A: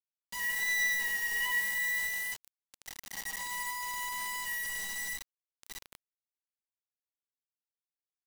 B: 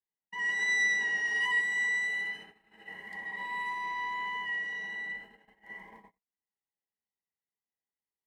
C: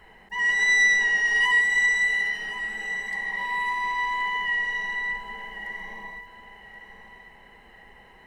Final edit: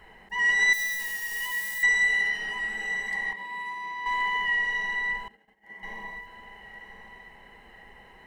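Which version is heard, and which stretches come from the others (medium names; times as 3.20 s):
C
0.73–1.83 s: from A
3.33–4.06 s: from B
5.28–5.83 s: from B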